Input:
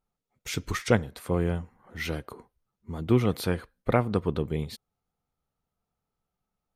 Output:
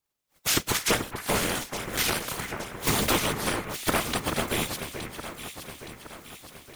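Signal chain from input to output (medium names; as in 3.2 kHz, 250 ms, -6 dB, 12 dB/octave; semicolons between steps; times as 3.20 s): spectral contrast reduction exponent 0.32; recorder AGC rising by 33 dB/s; whisper effect; echo whose repeats swap between lows and highs 434 ms, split 2.2 kHz, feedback 71%, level -7 dB; 1.62–2.30 s: transformer saturation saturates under 470 Hz; trim -4 dB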